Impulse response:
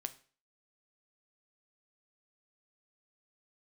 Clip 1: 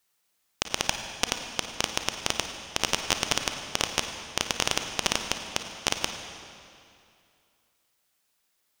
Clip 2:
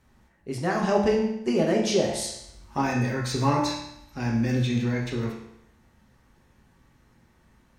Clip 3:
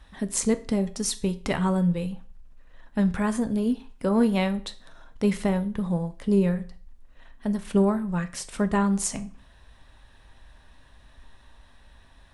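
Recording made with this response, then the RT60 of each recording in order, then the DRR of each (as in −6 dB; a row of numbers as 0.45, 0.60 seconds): 3; 2.5, 0.80, 0.40 seconds; 5.5, −2.0, 9.5 decibels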